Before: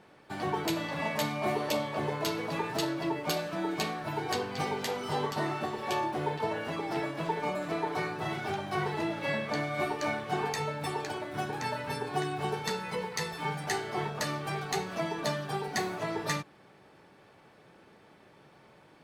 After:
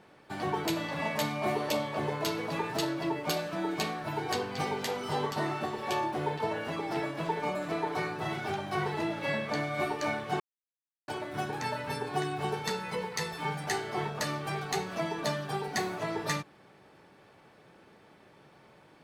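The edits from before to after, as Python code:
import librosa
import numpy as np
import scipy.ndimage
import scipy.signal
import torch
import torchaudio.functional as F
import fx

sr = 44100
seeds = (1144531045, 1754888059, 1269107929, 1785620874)

y = fx.edit(x, sr, fx.silence(start_s=10.4, length_s=0.68), tone=tone)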